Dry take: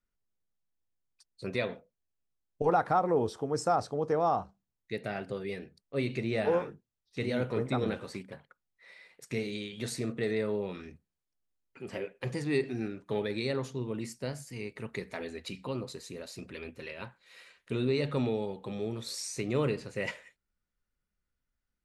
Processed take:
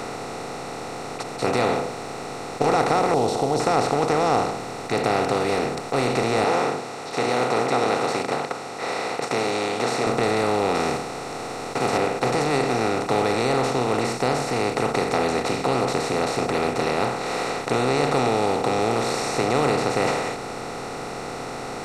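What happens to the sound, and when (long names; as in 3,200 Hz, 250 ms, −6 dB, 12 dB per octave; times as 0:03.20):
0:03.14–0:03.60: elliptic band-stop filter 760–3,800 Hz
0:06.44–0:10.07: band-pass filter 610–6,800 Hz
0:10.74–0:11.96: spectral envelope flattened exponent 0.6
whole clip: compressor on every frequency bin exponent 0.2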